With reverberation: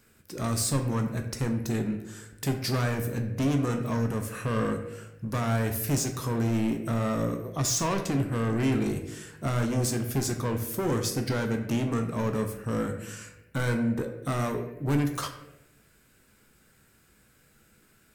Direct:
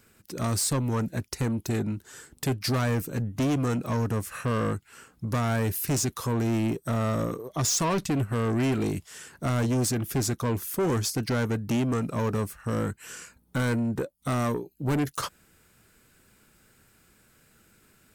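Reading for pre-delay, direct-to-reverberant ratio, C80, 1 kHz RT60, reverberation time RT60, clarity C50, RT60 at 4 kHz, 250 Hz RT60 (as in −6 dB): 14 ms, 4.0 dB, 10.0 dB, 0.80 s, 0.95 s, 8.0 dB, 0.60 s, 1.0 s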